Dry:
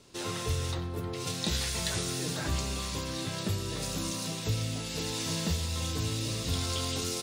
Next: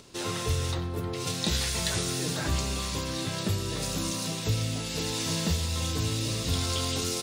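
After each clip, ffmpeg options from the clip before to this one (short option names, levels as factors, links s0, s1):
-af "acompressor=mode=upward:threshold=0.00251:ratio=2.5,volume=1.41"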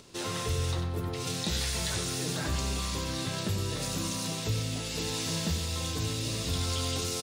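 -filter_complex "[0:a]asplit=2[s0][s1];[s1]alimiter=limit=0.075:level=0:latency=1,volume=1.12[s2];[s0][s2]amix=inputs=2:normalize=0,aecho=1:1:93:0.335,volume=0.398"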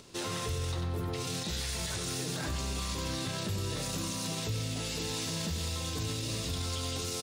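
-af "alimiter=level_in=1.26:limit=0.0631:level=0:latency=1:release=24,volume=0.794"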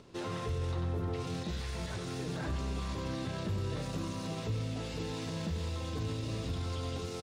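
-af "lowpass=f=1400:p=1,aecho=1:1:466:0.224"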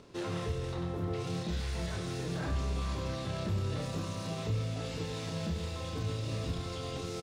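-filter_complex "[0:a]asplit=2[s0][s1];[s1]adelay=29,volume=0.562[s2];[s0][s2]amix=inputs=2:normalize=0"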